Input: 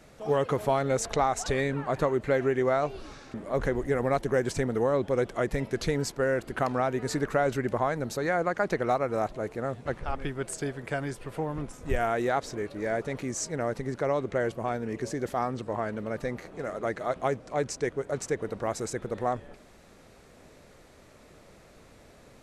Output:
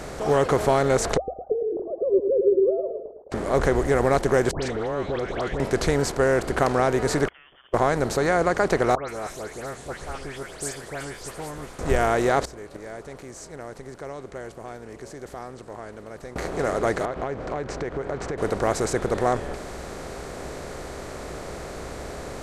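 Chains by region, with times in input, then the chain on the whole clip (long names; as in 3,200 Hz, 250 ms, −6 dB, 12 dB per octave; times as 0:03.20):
0:01.17–0:03.32: three sine waves on the formant tracks + Butterworth low-pass 540 Hz 48 dB per octave + repeating echo 108 ms, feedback 26%, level −11 dB
0:04.51–0:05.60: downward compressor 10 to 1, threshold −34 dBFS + low-pass with resonance 3,400 Hz, resonance Q 2.6 + all-pass dispersion highs, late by 118 ms, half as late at 1,500 Hz
0:07.28–0:07.74: voice inversion scrambler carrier 3,300 Hz + gate with flip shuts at −32 dBFS, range −42 dB
0:08.95–0:11.79: first-order pre-emphasis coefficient 0.9 + double-tracking delay 14 ms −14 dB + all-pass dispersion highs, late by 145 ms, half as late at 2,700 Hz
0:12.44–0:16.36: high-shelf EQ 7,900 Hz +9 dB + gate with flip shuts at −30 dBFS, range −25 dB
0:17.05–0:18.38: low-pass filter 2,400 Hz + downward compressor 12 to 1, threshold −37 dBFS
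whole clip: compressor on every frequency bin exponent 0.6; parametric band 63 Hz +11 dB 0.23 octaves; level +2.5 dB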